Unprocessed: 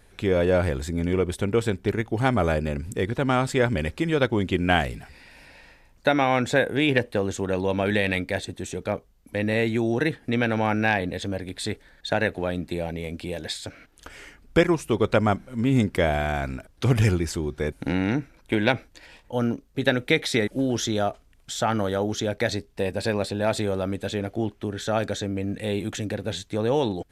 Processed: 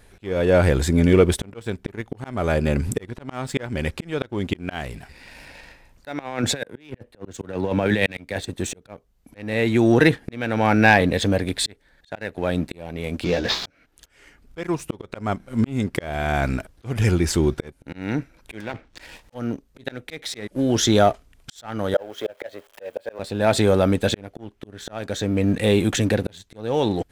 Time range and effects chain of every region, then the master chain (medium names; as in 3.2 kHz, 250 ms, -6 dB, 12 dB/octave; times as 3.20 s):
6.19–8.43 s: compressor with a negative ratio -25 dBFS, ratio -0.5 + three bands expanded up and down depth 70%
13.24–13.66 s: CVSD coder 32 kbps + doubling 16 ms -4.5 dB
18.60–19.35 s: block-companded coder 3-bit + low-pass that closes with the level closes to 2.3 kHz, closed at -21 dBFS + compression 3:1, threshold -26 dBFS
21.94–23.19 s: zero-crossing glitches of -25.5 dBFS + three-band isolator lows -18 dB, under 370 Hz, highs -17 dB, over 2.7 kHz + small resonant body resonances 560/3200 Hz, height 10 dB, ringing for 20 ms
whole clip: slow attack 607 ms; waveshaping leveller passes 1; trim +5.5 dB